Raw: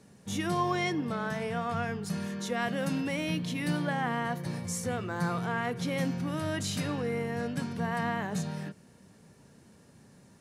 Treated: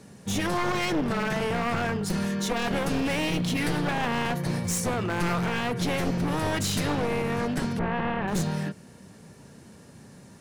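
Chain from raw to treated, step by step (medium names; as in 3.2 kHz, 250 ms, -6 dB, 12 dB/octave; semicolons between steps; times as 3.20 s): one-sided wavefolder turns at -31.5 dBFS; peak limiter -24 dBFS, peak gain reduction 5.5 dB; 7.79–8.28 s: Bessel low-pass 2.1 kHz, order 4; trim +8 dB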